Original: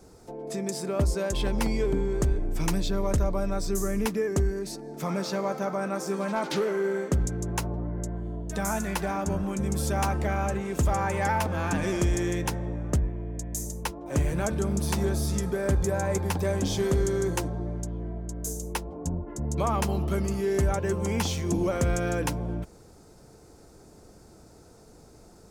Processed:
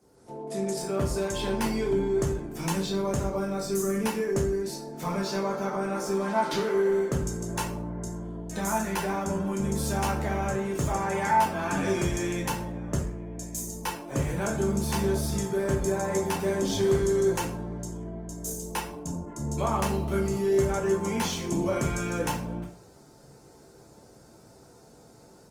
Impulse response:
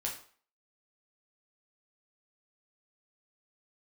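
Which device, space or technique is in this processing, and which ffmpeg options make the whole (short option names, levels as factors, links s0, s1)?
far-field microphone of a smart speaker: -filter_complex "[1:a]atrim=start_sample=2205[s0];[0:a][s0]afir=irnorm=-1:irlink=0,highpass=99,dynaudnorm=f=140:g=3:m=2.37,volume=0.376" -ar 48000 -c:a libopus -b:a 24k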